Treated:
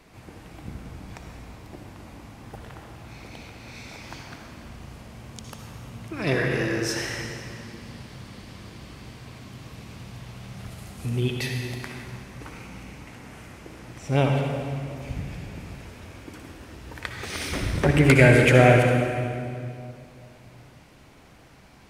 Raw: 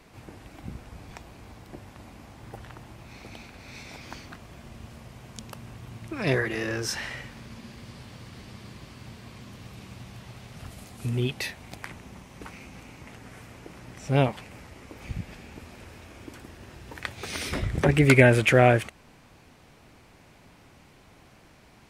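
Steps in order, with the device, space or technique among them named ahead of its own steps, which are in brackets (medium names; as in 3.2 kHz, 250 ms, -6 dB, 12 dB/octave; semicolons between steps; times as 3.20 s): stairwell (reverberation RT60 2.4 s, pre-delay 56 ms, DRR 1.5 dB)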